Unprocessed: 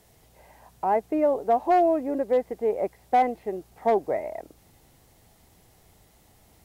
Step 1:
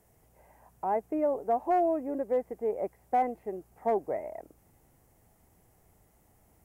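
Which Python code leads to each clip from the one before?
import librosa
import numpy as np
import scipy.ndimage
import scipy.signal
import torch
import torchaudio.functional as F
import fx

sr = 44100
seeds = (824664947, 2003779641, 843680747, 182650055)

y = fx.peak_eq(x, sr, hz=3900.0, db=-13.5, octaves=1.1)
y = F.gain(torch.from_numpy(y), -5.5).numpy()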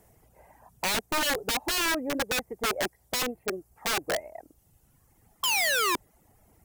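y = fx.dereverb_blind(x, sr, rt60_s=1.4)
y = fx.spec_paint(y, sr, seeds[0], shape='fall', start_s=5.43, length_s=0.53, low_hz=320.0, high_hz=1100.0, level_db=-28.0)
y = (np.mod(10.0 ** (27.5 / 20.0) * y + 1.0, 2.0) - 1.0) / 10.0 ** (27.5 / 20.0)
y = F.gain(torch.from_numpy(y), 5.5).numpy()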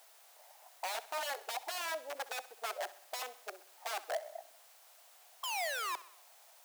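y = fx.quant_dither(x, sr, seeds[1], bits=8, dither='triangular')
y = fx.ladder_highpass(y, sr, hz=610.0, resonance_pct=60)
y = fx.echo_feedback(y, sr, ms=64, feedback_pct=53, wet_db=-17.0)
y = F.gain(torch.from_numpy(y), -3.0).numpy()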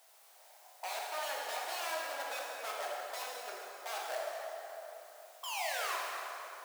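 y = fx.rev_plate(x, sr, seeds[2], rt60_s=3.5, hf_ratio=0.65, predelay_ms=0, drr_db=-4.0)
y = F.gain(torch.from_numpy(y), -4.0).numpy()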